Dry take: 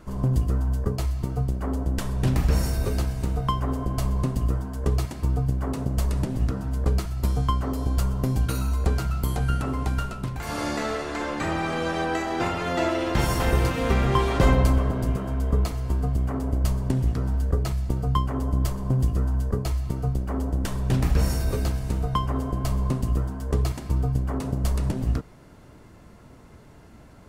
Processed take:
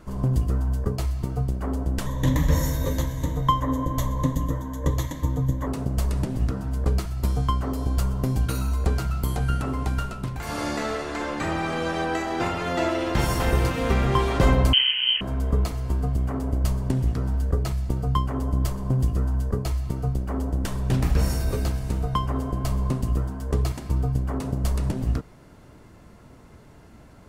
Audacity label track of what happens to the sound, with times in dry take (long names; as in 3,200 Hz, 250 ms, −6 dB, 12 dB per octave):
2.060000	5.670000	EQ curve with evenly spaced ripples crests per octave 1.1, crest to trough 14 dB
14.730000	15.210000	voice inversion scrambler carrier 3,100 Hz